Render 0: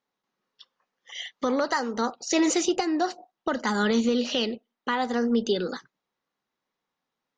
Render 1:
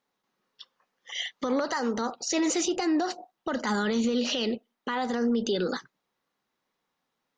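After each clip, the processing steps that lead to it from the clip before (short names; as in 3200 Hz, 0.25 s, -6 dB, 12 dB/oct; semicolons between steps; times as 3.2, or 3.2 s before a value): limiter -22.5 dBFS, peak gain reduction 9.5 dB; gain +3.5 dB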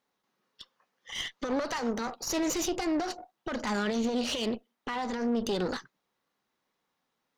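one diode to ground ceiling -34.5 dBFS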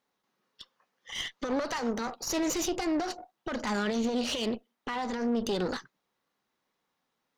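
nothing audible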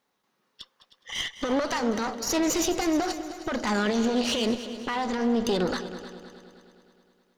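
multi-head echo 0.104 s, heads second and third, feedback 51%, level -14.5 dB; gain +4.5 dB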